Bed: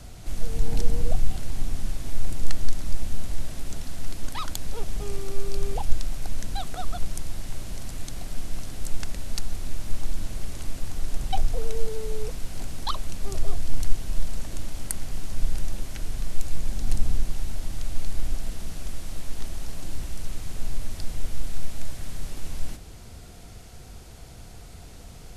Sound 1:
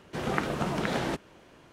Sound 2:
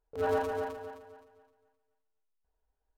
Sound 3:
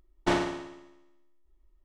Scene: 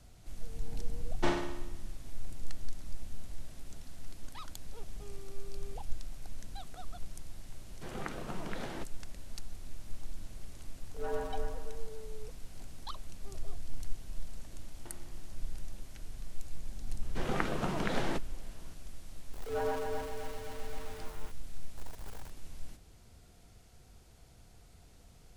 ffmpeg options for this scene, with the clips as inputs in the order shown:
-filter_complex "[3:a]asplit=2[a][b];[1:a]asplit=2[c][d];[2:a]asplit=2[e][f];[0:a]volume=-14dB[g];[e]asplit=2[h][i];[i]adelay=93.29,volume=-7dB,highshelf=f=4k:g=-2.1[j];[h][j]amix=inputs=2:normalize=0[k];[b]acompressor=threshold=-45dB:ratio=4:attack=15:release=580:knee=1:detection=peak[l];[f]aeval=exprs='val(0)+0.5*0.0178*sgn(val(0))':c=same[m];[a]atrim=end=1.84,asetpts=PTS-STARTPTS,volume=-6dB,afade=t=in:d=0.004:c=hsin,afade=t=out:st=1.836:d=0.004:c=hsin,adelay=960[n];[c]atrim=end=1.72,asetpts=PTS-STARTPTS,volume=-12dB,afade=t=in:d=0.004:c=hsin,afade=t=out:st=1.716:d=0.004:c=hsin,adelay=7680[o];[k]atrim=end=2.97,asetpts=PTS-STARTPTS,volume=-9dB,afade=t=in:d=0.004:c=hsin,afade=t=out:st=2.966:d=0.004:c=hsin,adelay=10810[p];[l]atrim=end=1.84,asetpts=PTS-STARTPTS,volume=-12.5dB,afade=t=in:d=0.004:c=hsin,afade=t=out:st=1.836:d=0.004:c=hsin,adelay=14590[q];[d]atrim=end=1.72,asetpts=PTS-STARTPTS,volume=-4.5dB,afade=t=in:d=0.004:c=hsin,afade=t=out:st=1.716:d=0.004:c=hsin,adelay=17020[r];[m]atrim=end=2.97,asetpts=PTS-STARTPTS,volume=-6dB,afade=t=in:d=0.004:c=hsin,afade=t=out:st=2.966:d=0.004:c=hsin,adelay=19330[s];[g][n][o][p][q][r][s]amix=inputs=7:normalize=0"

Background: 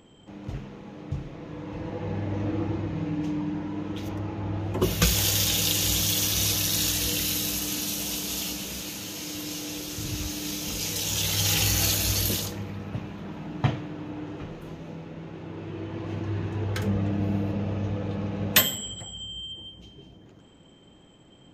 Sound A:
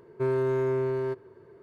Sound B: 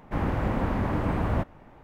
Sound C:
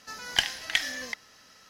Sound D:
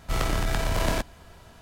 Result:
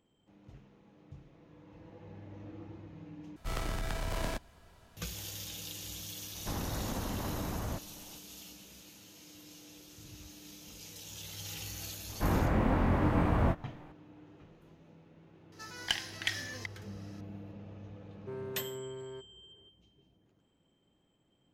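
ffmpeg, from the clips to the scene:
-filter_complex "[2:a]asplit=2[a][b];[0:a]volume=-19dB[c];[a]acompressor=threshold=-27dB:ratio=6:attack=3.2:release=140:knee=1:detection=peak[d];[b]asplit=2[e][f];[f]adelay=23,volume=-4dB[g];[e][g]amix=inputs=2:normalize=0[h];[3:a]acontrast=35[i];[c]asplit=2[j][k];[j]atrim=end=3.364[l];[4:a]atrim=end=1.61,asetpts=PTS-STARTPTS,volume=-10dB[m];[k]atrim=start=4.966[n];[d]atrim=end=1.83,asetpts=PTS-STARTPTS,volume=-5.5dB,afade=t=in:d=0.004:c=hsin,afade=t=out:st=1.826:d=0.004:c=hsin,adelay=6350[o];[h]atrim=end=1.83,asetpts=PTS-STARTPTS,volume=-3dB,afade=t=in:d=0.004:c=hsin,afade=t=out:st=1.826:d=0.004:c=hsin,adelay=12090[p];[i]atrim=end=1.69,asetpts=PTS-STARTPTS,volume=-12dB,afade=t=in:d=0.004:c=hsin,afade=t=out:st=1.686:d=0.004:c=hsin,adelay=15520[q];[1:a]atrim=end=1.62,asetpts=PTS-STARTPTS,volume=-15.5dB,afade=t=in:d=0.004:c=hsin,afade=t=out:st=1.616:d=0.004:c=hsin,adelay=18070[r];[l][m]acrossfade=d=0.004:c1=hsin:c2=hsin[s];[s][n]acrossfade=d=0.004:c1=hsin:c2=hsin[t];[t][o][p][q][r]amix=inputs=5:normalize=0"

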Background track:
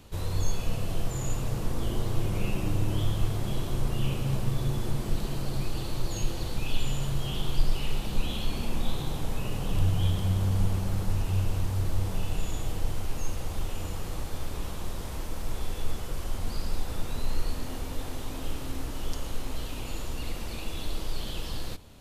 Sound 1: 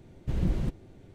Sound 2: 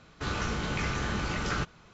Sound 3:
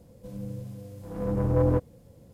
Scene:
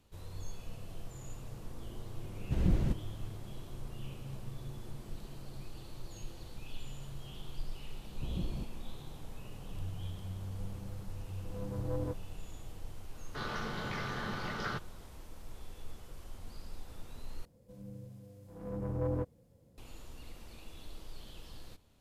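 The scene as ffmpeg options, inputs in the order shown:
-filter_complex "[1:a]asplit=2[a][b];[3:a]asplit=2[c][d];[0:a]volume=-15.5dB[e];[b]asuperstop=centerf=2100:order=20:qfactor=0.93[f];[2:a]highpass=f=110:w=0.5412,highpass=f=110:w=1.3066,equalizer=f=170:t=q:w=4:g=-4,equalizer=f=300:t=q:w=4:g=-7,equalizer=f=2.5k:t=q:w=4:g=-9,lowpass=f=5k:w=0.5412,lowpass=f=5k:w=1.3066[g];[e]asplit=2[h][i];[h]atrim=end=17.454[j];[d]atrim=end=2.33,asetpts=PTS-STARTPTS,volume=-11dB[k];[i]atrim=start=19.776[l];[a]atrim=end=1.14,asetpts=PTS-STARTPTS,volume=-1.5dB,afade=t=in:d=0.004:c=hsin,afade=t=out:st=1.136:d=0.004:c=hsin,adelay=2230[m];[f]atrim=end=1.14,asetpts=PTS-STARTPTS,volume=-9.5dB,afade=t=in:d=0.004:c=hsin,afade=t=out:st=1.136:d=0.004:c=hsin,adelay=350154S[n];[c]atrim=end=2.33,asetpts=PTS-STARTPTS,volume=-14dB,afade=t=in:d=0.004:c=hsin,afade=t=out:st=2.326:d=0.004:c=hsin,adelay=455994S[o];[g]atrim=end=1.93,asetpts=PTS-STARTPTS,volume=-4.5dB,afade=t=in:d=0.004:c=hsin,afade=t=out:st=1.926:d=0.004:c=hsin,adelay=13140[p];[j][k]acrossfade=d=0.004:c1=hsin:c2=hsin[q];[q][l]acrossfade=d=0.004:c1=hsin:c2=hsin[r];[r][m][n][o][p]amix=inputs=5:normalize=0"

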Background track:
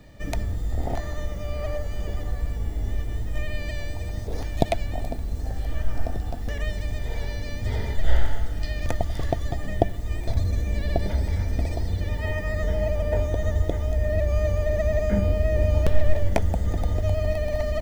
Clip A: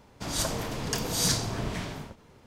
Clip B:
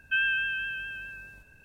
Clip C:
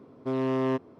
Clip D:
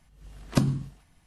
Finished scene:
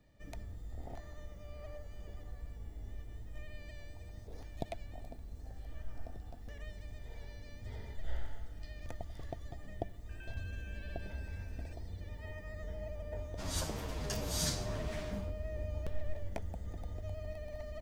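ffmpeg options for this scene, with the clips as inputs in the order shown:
-filter_complex "[0:a]volume=-18.5dB[a];[2:a]acompressor=threshold=-48dB:ratio=6:attack=3.2:release=140:knee=1:detection=peak[b];[1:a]asplit=2[c][d];[d]adelay=9.2,afreqshift=-2.4[e];[c][e]amix=inputs=2:normalize=1[f];[b]atrim=end=1.64,asetpts=PTS-STARTPTS,volume=-6.5dB,afade=t=in:d=0.004:c=hsin,afade=t=out:st=1.636:d=0.004:c=hsin,adelay=10090[g];[f]atrim=end=2.46,asetpts=PTS-STARTPTS,volume=-6.5dB,afade=t=in:d=0.004:c=hsin,afade=t=out:st=2.456:d=0.004:c=hsin,adelay=13170[h];[a][g][h]amix=inputs=3:normalize=0"

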